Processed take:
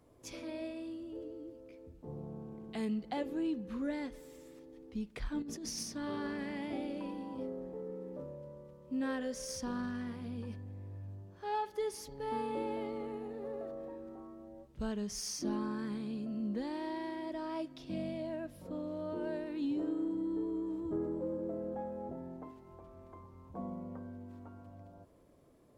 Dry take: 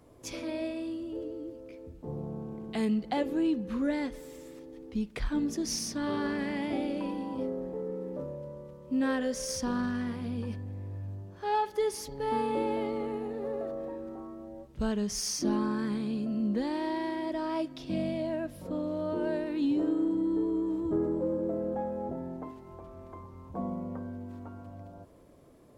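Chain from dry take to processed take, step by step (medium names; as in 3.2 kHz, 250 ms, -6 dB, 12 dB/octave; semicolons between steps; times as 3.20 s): 5.42–5.83 s: compressor with a negative ratio -35 dBFS, ratio -1; trim -7 dB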